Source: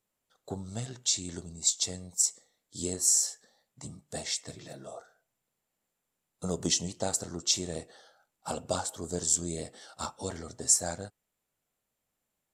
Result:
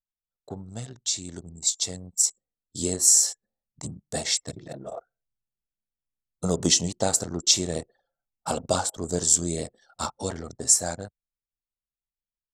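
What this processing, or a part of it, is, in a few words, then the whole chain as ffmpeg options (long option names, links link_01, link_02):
voice memo with heavy noise removal: -af "anlmdn=0.0631,dynaudnorm=framelen=430:gausssize=11:maxgain=9dB"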